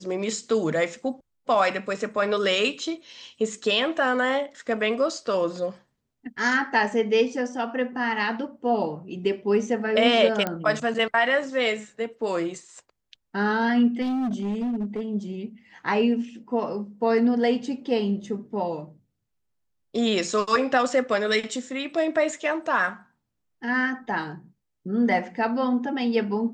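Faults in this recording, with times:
10.47 pop -12 dBFS
14.01–15.01 clipped -23.5 dBFS

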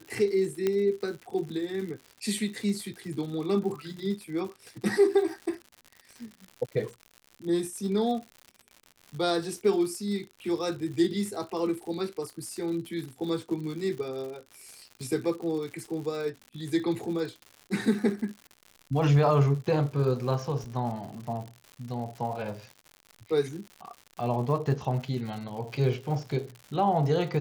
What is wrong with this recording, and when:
crackle 140/s -37 dBFS
0.67 pop -14 dBFS

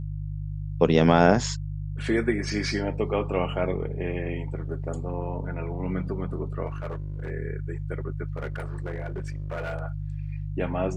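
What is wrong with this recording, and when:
hum 50 Hz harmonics 3 -32 dBFS
6.66–7.3 clipped -28 dBFS
8.36–9.74 clipped -27.5 dBFS

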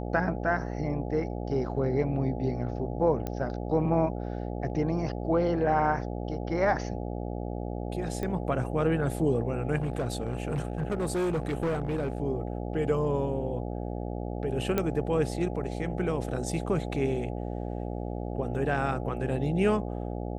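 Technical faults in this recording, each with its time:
buzz 60 Hz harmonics 14 -34 dBFS
3.27 pop -19 dBFS
8.23 pop -21 dBFS
9.76–12.2 clipped -25 dBFS
14.78 pop -13 dBFS

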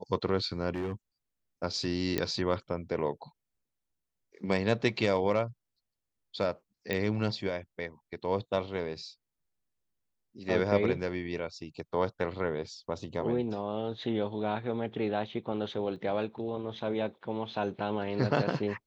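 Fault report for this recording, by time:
0.75–0.93 clipped -29.5 dBFS
2.18 pop -14 dBFS
6.93 pop -17 dBFS
15.96 gap 2.2 ms

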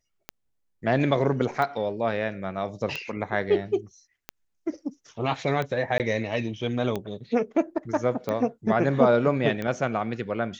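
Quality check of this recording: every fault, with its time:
tick 45 rpm -16 dBFS
5.98–6 gap 18 ms

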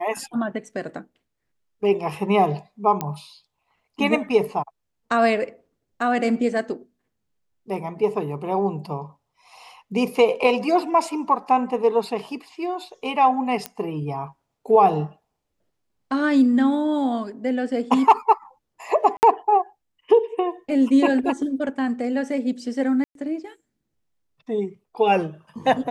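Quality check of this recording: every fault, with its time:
3.01 pop -10 dBFS
13.66 pop -11 dBFS
19.17–19.23 gap 59 ms
23.04–23.15 gap 0.112 s

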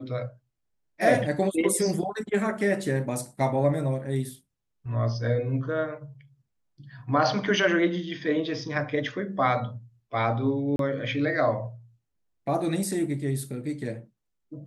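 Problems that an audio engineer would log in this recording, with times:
10.76–10.79 gap 32 ms

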